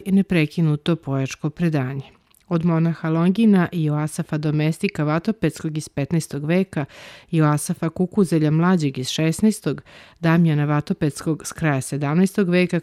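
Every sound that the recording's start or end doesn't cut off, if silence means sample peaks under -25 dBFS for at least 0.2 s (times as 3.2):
2.51–6.84
7.33–9.78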